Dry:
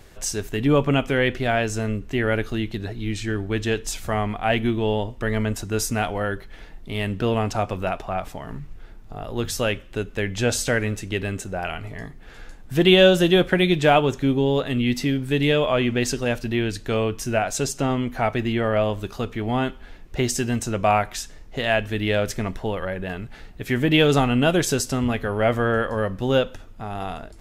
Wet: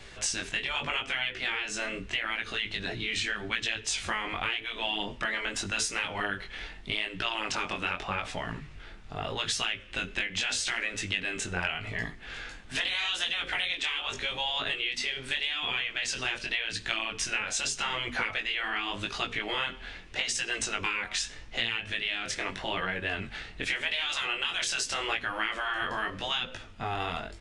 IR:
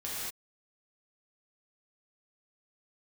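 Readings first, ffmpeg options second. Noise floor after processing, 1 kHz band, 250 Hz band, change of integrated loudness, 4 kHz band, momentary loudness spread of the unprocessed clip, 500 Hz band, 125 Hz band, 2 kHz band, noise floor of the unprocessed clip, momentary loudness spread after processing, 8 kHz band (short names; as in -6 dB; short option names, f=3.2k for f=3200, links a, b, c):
-46 dBFS, -9.0 dB, -20.0 dB, -8.0 dB, -1.0 dB, 13 LU, -18.5 dB, -19.0 dB, -2.0 dB, -43 dBFS, 6 LU, -3.5 dB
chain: -filter_complex "[0:a]afftfilt=real='re*lt(hypot(re,im),0.224)':imag='im*lt(hypot(re,im),0.224)':win_size=1024:overlap=0.75,equalizer=f=2.8k:w=0.55:g=11.5,asplit=2[a][b];[b]adelay=87.46,volume=-29dB,highshelf=f=4k:g=-1.97[c];[a][c]amix=inputs=2:normalize=0,acrossover=split=860|950[d][e][f];[f]dynaudnorm=f=280:g=13:m=3.5dB[g];[d][e][g]amix=inputs=3:normalize=0,aresample=22050,aresample=44100,acompressor=threshold=-23dB:ratio=20,flanger=delay=17:depth=6.4:speed=0.83"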